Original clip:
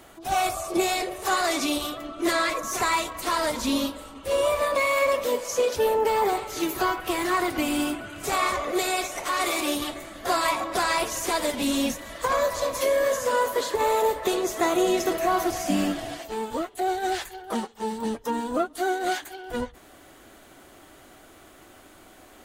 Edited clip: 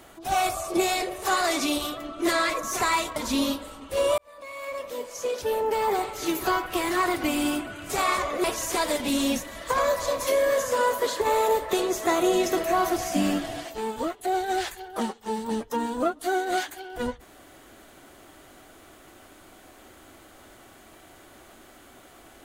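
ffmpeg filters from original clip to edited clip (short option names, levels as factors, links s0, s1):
-filter_complex "[0:a]asplit=4[s0][s1][s2][s3];[s0]atrim=end=3.162[s4];[s1]atrim=start=3.498:end=4.52,asetpts=PTS-STARTPTS,afade=t=out:st=1.018:d=0.004:c=hsin[s5];[s2]atrim=start=4.52:end=8.782,asetpts=PTS-STARTPTS,afade=t=in:d=2.1[s6];[s3]atrim=start=10.978[s7];[s5][s6]concat=n=2:v=0:a=1[s8];[s4][s8]acrossfade=d=0.004:c1=hsin:c2=hsin[s9];[s9][s7]acrossfade=d=0.004:c1=hsin:c2=hsin"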